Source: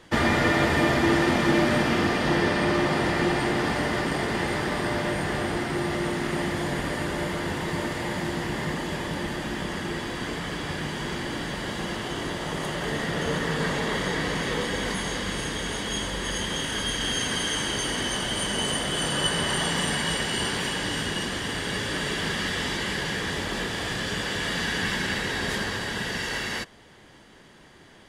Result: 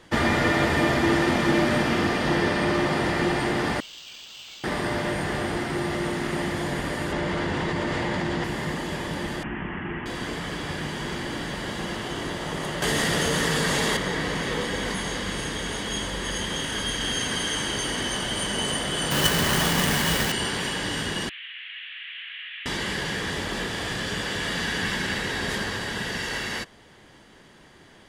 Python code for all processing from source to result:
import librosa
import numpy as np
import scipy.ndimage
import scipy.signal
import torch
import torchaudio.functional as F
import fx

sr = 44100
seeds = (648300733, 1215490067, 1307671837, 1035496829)

y = fx.chain(x, sr, fx.median_filter(points=3),
    fx.cheby1_highpass(hz=2700.0, order=10),
    fx.resample_linear(factor=4), at=(3.8, 4.64))
y = fx.chain(y, sr, fx.air_absorb(metres=73.0),
    fx.env_flatten(amount_pct=100), at=(7.12, 8.44))
y = fx.chain(y, sr, fx.steep_lowpass(hz=2900.0, slope=72),
    fx.peak_eq(hz=540.0, db=-9.5, octaves=0.53), at=(9.43, 10.06))
y = fx.chain(y, sr, fx.high_shelf(hz=4100.0, db=12.0),
    fx.env_flatten(amount_pct=100), at=(12.82, 13.97))
y = fx.chain(y, sr, fx.halfwave_hold(),
    fx.peak_eq(hz=510.0, db=-3.0, octaves=2.3), at=(19.11, 20.32))
y = fx.chain(y, sr, fx.delta_mod(bps=16000, step_db=-27.5),
    fx.cheby2_highpass(hz=520.0, order=4, stop_db=70), at=(21.29, 22.66))